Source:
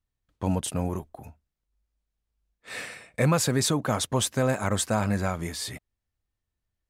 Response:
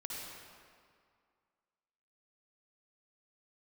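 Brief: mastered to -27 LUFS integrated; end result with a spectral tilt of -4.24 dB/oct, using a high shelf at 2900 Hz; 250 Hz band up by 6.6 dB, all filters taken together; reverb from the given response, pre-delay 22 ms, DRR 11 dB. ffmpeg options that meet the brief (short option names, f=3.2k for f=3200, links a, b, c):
-filter_complex "[0:a]equalizer=f=250:t=o:g=8.5,highshelf=f=2.9k:g=7,asplit=2[a][b];[1:a]atrim=start_sample=2205,adelay=22[c];[b][c]afir=irnorm=-1:irlink=0,volume=-11dB[d];[a][d]amix=inputs=2:normalize=0,volume=-4.5dB"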